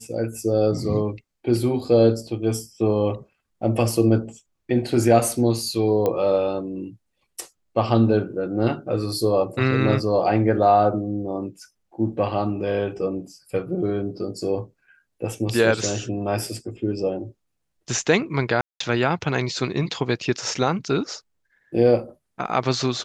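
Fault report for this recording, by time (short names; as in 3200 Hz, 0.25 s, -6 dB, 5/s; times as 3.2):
6.06 pop -11 dBFS
18.61–18.8 gap 0.194 s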